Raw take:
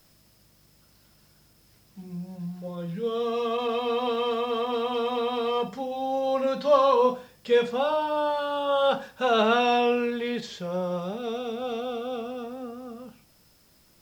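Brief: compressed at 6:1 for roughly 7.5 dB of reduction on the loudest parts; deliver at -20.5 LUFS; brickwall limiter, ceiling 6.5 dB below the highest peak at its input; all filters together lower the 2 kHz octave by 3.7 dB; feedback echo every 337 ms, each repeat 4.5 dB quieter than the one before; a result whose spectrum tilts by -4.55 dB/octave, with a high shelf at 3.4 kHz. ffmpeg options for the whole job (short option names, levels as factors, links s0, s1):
-af "equalizer=f=2000:t=o:g=-3.5,highshelf=f=3400:g=-6,acompressor=threshold=0.0631:ratio=6,alimiter=limit=0.0668:level=0:latency=1,aecho=1:1:337|674|1011|1348|1685|2022|2359|2696|3033:0.596|0.357|0.214|0.129|0.0772|0.0463|0.0278|0.0167|0.01,volume=3.16"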